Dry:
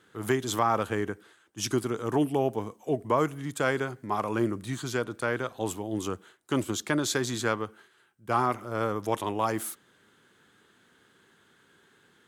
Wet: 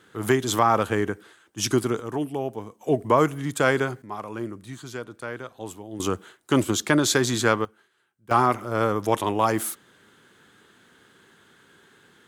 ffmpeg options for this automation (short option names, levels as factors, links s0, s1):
-af "asetnsamples=n=441:p=0,asendcmd='2 volume volume -2.5dB;2.81 volume volume 6dB;4.02 volume volume -5dB;6 volume volume 7dB;7.65 volume volume -5.5dB;8.31 volume volume 6dB',volume=1.88"